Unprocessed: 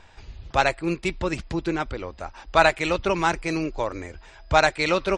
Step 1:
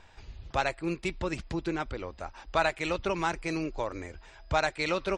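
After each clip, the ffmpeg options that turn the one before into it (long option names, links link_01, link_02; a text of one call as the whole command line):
ffmpeg -i in.wav -af "acompressor=threshold=-25dB:ratio=1.5,volume=-4.5dB" out.wav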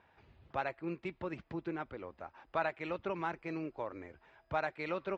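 ffmpeg -i in.wav -af "highpass=120,lowpass=2200,volume=-7dB" out.wav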